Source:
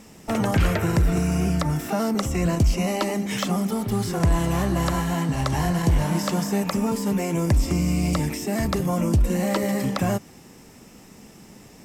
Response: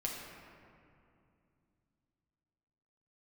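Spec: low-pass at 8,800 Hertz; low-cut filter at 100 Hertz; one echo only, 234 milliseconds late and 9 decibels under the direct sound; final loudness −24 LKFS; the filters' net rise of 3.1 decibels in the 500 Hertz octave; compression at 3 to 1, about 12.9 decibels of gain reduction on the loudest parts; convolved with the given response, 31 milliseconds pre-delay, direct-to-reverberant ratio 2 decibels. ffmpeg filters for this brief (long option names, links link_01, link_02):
-filter_complex "[0:a]highpass=100,lowpass=8800,equalizer=frequency=500:width_type=o:gain=4,acompressor=threshold=-34dB:ratio=3,aecho=1:1:234:0.355,asplit=2[link_01][link_02];[1:a]atrim=start_sample=2205,adelay=31[link_03];[link_02][link_03]afir=irnorm=-1:irlink=0,volume=-4dB[link_04];[link_01][link_04]amix=inputs=2:normalize=0,volume=7.5dB"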